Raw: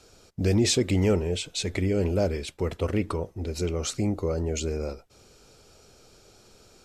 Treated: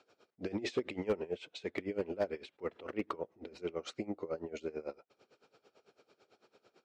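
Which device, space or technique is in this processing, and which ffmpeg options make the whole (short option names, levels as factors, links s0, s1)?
helicopter radio: -af "highpass=300,lowpass=2800,aeval=exprs='val(0)*pow(10,-20*(0.5-0.5*cos(2*PI*9*n/s))/20)':c=same,asoftclip=type=hard:threshold=0.0841,volume=0.708"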